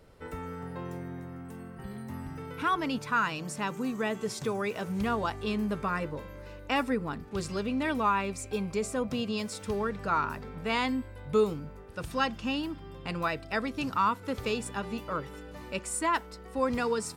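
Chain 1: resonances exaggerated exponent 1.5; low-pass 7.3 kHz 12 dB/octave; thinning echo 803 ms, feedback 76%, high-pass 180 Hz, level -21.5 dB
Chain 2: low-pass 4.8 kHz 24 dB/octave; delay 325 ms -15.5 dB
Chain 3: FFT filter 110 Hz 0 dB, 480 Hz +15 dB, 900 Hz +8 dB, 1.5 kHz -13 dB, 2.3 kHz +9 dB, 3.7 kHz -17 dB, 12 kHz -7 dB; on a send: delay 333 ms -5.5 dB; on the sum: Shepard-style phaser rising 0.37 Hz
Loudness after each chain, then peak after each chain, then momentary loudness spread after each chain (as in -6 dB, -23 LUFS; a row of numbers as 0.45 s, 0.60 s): -32.0 LUFS, -32.0 LUFS, -23.5 LUFS; -15.5 dBFS, -15.0 dBFS, -6.5 dBFS; 13 LU, 12 LU, 12 LU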